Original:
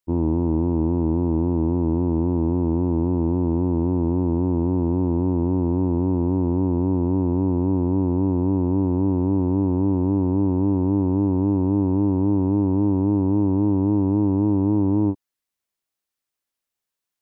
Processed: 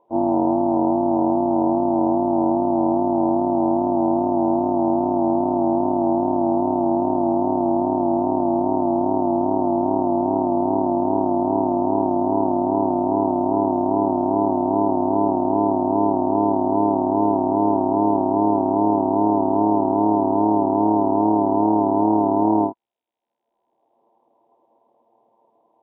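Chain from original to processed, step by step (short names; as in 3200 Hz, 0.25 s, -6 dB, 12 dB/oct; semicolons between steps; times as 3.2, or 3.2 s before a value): half-waves squared off; HPF 410 Hz 12 dB/oct; upward compressor, threshold -33 dBFS; rippled Chebyshev low-pass 1000 Hz, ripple 3 dB; granular stretch 1.5×, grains 53 ms; gain +9 dB; Nellymoser 16 kbps 8000 Hz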